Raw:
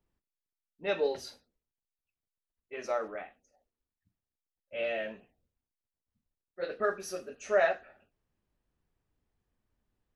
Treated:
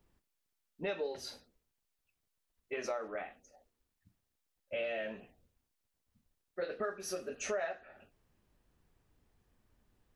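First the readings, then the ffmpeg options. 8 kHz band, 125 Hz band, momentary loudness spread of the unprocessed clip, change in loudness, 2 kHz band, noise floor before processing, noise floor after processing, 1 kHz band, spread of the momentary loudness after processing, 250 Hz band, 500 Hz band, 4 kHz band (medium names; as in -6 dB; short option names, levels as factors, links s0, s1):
+2.5 dB, no reading, 17 LU, -6.5 dB, -6.0 dB, under -85 dBFS, -84 dBFS, -7.5 dB, 12 LU, -2.0 dB, -6.5 dB, -2.5 dB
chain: -af "acompressor=threshold=0.00631:ratio=5,volume=2.51"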